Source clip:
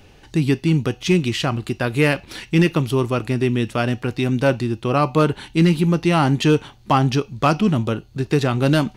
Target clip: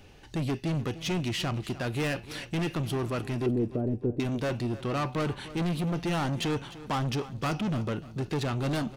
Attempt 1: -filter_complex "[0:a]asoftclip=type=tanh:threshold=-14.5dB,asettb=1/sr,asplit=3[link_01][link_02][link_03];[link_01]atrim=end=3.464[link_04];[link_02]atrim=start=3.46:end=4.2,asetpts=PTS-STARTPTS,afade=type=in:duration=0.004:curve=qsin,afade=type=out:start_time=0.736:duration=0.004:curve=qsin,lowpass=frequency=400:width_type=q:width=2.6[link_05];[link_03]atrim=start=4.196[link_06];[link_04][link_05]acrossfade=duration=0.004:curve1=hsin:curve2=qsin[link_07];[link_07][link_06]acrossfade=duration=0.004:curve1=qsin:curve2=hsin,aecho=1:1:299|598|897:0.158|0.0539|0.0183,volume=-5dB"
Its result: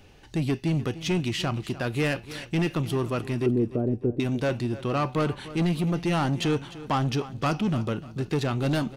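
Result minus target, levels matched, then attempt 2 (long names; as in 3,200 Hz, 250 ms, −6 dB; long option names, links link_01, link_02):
soft clipping: distortion −5 dB
-filter_complex "[0:a]asoftclip=type=tanh:threshold=-21dB,asettb=1/sr,asplit=3[link_01][link_02][link_03];[link_01]atrim=end=3.464[link_04];[link_02]atrim=start=3.46:end=4.2,asetpts=PTS-STARTPTS,afade=type=in:duration=0.004:curve=qsin,afade=type=out:start_time=0.736:duration=0.004:curve=qsin,lowpass=frequency=400:width_type=q:width=2.6[link_05];[link_03]atrim=start=4.196[link_06];[link_04][link_05]acrossfade=duration=0.004:curve1=hsin:curve2=qsin[link_07];[link_07][link_06]acrossfade=duration=0.004:curve1=qsin:curve2=hsin,aecho=1:1:299|598|897:0.158|0.0539|0.0183,volume=-5dB"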